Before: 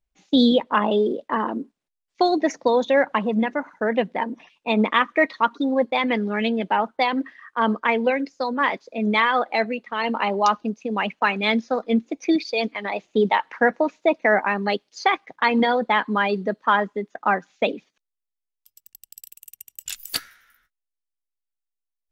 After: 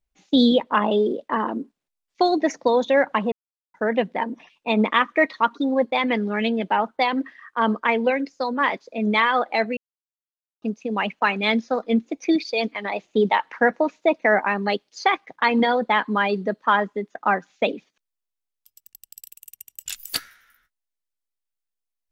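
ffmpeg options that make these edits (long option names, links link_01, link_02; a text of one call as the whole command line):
ffmpeg -i in.wav -filter_complex "[0:a]asplit=5[link_01][link_02][link_03][link_04][link_05];[link_01]atrim=end=3.32,asetpts=PTS-STARTPTS,afade=type=out:start_time=3.316:duration=0.004:curve=hsin[link_06];[link_02]atrim=start=3.32:end=3.74,asetpts=PTS-STARTPTS,volume=0[link_07];[link_03]atrim=start=3.74:end=9.77,asetpts=PTS-STARTPTS,afade=type=in:duration=0.004:curve=hsin,afade=type=out:start_time=6.026:duration=0.004:curve=hsin[link_08];[link_04]atrim=start=9.77:end=10.62,asetpts=PTS-STARTPTS,volume=0[link_09];[link_05]atrim=start=10.62,asetpts=PTS-STARTPTS,afade=type=in:duration=0.004:curve=hsin[link_10];[link_06][link_07][link_08][link_09][link_10]concat=n=5:v=0:a=1" out.wav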